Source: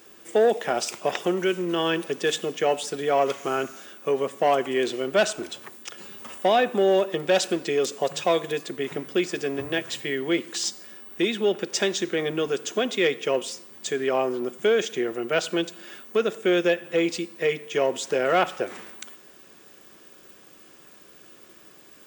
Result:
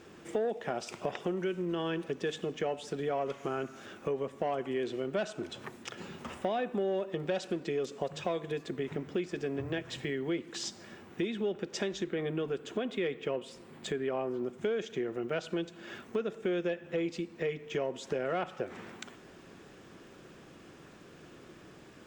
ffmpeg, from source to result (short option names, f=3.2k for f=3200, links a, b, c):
-filter_complex "[0:a]asettb=1/sr,asplit=3[a][b][c];[a]atrim=end=12.044[d];[b]atrim=start=12.04:end=14.29,asetpts=PTS-STARTPTS,afade=t=in:d=0.004:c=qsin,afade=t=out:st=2.246:d=0.004:c=qsin,equalizer=f=5.9k:t=o:w=0.63:g=-8[e];[c]atrim=start=14.286[f];[d][e]acrossfade=d=0.004:c1=hsin:c2=qsin[g];[g][f]acrossfade=d=0.004:c1=qsin:c2=hsin,aemphasis=mode=reproduction:type=bsi,acompressor=threshold=-36dB:ratio=2.5"